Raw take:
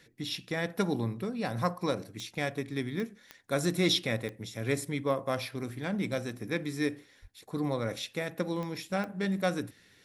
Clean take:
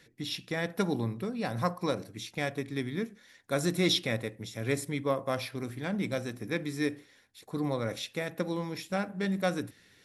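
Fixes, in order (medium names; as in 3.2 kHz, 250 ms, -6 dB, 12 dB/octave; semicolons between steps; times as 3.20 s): de-click; de-plosive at 7.21 s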